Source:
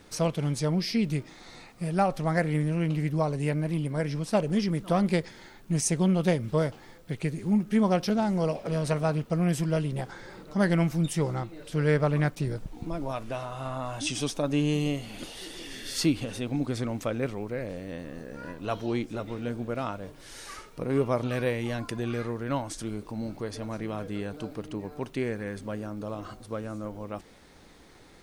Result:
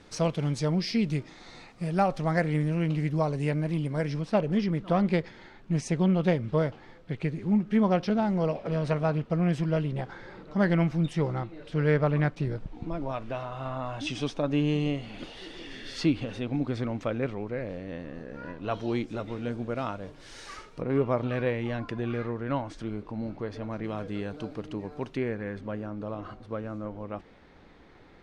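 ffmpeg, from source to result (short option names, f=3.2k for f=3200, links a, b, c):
-af "asetnsamples=n=441:p=0,asendcmd='4.21 lowpass f 3500;18.74 lowpass f 6000;20.81 lowpass f 2900;23.84 lowpass f 5200;25.17 lowpass f 2800',lowpass=6.4k"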